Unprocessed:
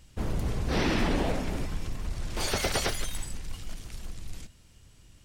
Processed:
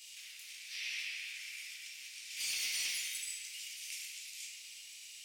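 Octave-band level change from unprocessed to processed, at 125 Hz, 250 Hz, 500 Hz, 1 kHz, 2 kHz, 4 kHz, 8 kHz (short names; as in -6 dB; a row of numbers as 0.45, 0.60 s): under -40 dB, under -40 dB, under -40 dB, -32.5 dB, -5.0 dB, -3.0 dB, -1.0 dB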